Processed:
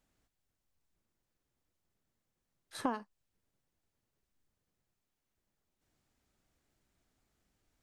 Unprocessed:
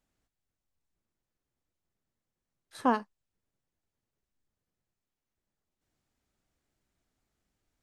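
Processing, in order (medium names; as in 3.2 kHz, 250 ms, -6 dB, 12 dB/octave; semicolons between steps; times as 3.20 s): compression 8:1, threshold -33 dBFS, peak gain reduction 13.5 dB; trim +2.5 dB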